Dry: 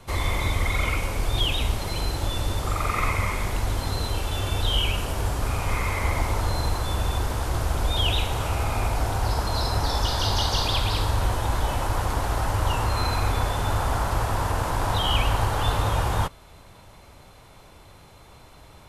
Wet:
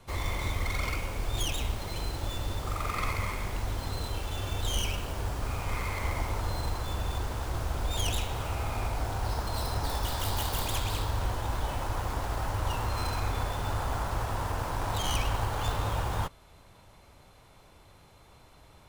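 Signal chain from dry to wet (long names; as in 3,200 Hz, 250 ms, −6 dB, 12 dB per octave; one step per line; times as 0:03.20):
stylus tracing distortion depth 0.21 ms
level −7 dB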